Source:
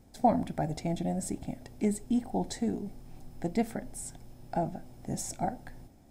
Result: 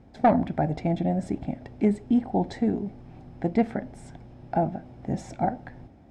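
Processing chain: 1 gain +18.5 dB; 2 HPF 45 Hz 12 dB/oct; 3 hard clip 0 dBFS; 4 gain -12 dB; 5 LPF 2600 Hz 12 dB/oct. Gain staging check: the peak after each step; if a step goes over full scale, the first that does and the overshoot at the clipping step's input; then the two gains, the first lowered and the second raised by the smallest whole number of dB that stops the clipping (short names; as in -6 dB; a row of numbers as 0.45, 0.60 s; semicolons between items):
+6.5, +6.5, 0.0, -12.0, -11.5 dBFS; step 1, 6.5 dB; step 1 +11.5 dB, step 4 -5 dB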